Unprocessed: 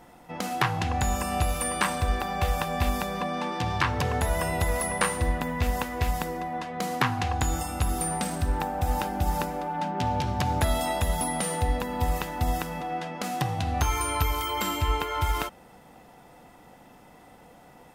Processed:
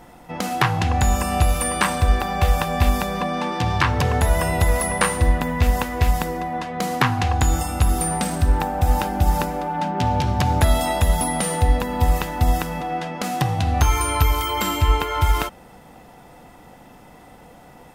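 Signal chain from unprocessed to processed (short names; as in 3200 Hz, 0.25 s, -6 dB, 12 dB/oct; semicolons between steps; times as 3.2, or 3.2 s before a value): low shelf 110 Hz +5 dB; gain +5.5 dB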